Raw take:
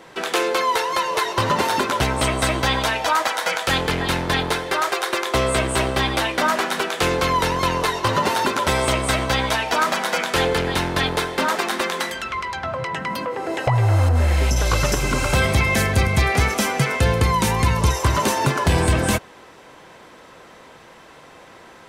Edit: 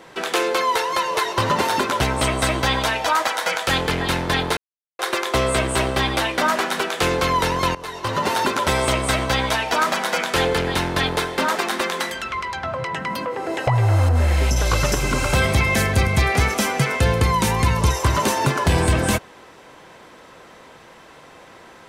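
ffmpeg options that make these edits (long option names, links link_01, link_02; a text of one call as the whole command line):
ffmpeg -i in.wav -filter_complex "[0:a]asplit=4[link_01][link_02][link_03][link_04];[link_01]atrim=end=4.57,asetpts=PTS-STARTPTS,afade=type=out:start_time=4.566:duration=0.004:curve=hsin[link_05];[link_02]atrim=start=4.57:end=4.99,asetpts=PTS-STARTPTS,volume=0[link_06];[link_03]atrim=start=4.99:end=7.75,asetpts=PTS-STARTPTS,afade=type=in:duration=0.004:curve=hsin,afade=type=out:start_time=2.756:duration=0.004:curve=hsin:silence=0.125893[link_07];[link_04]atrim=start=7.75,asetpts=PTS-STARTPTS,afade=type=in:duration=0.61:silence=0.125893[link_08];[link_05][link_06][link_07][link_08]concat=n=4:v=0:a=1" out.wav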